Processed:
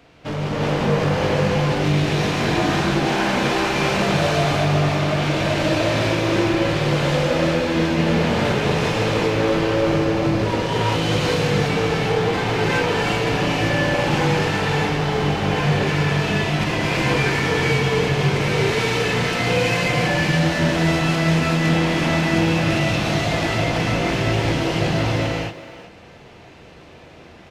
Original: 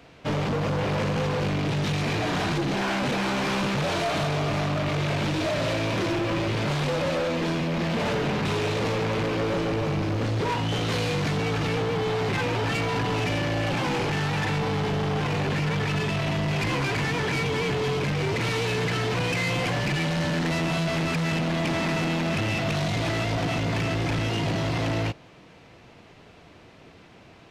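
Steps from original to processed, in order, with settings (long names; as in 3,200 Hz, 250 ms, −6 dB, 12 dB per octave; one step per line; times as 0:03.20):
far-end echo of a speakerphone 380 ms, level −11 dB
reverb whose tail is shaped and stops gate 420 ms rising, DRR −6.5 dB
level −1 dB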